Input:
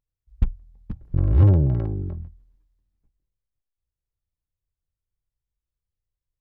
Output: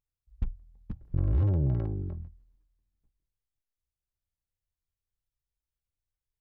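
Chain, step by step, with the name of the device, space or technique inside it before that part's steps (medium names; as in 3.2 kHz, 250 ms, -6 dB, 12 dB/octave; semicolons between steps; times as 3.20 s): clipper into limiter (hard clipper -7 dBFS, distortion -38 dB; peak limiter -13.5 dBFS, peak gain reduction 6.5 dB); trim -5.5 dB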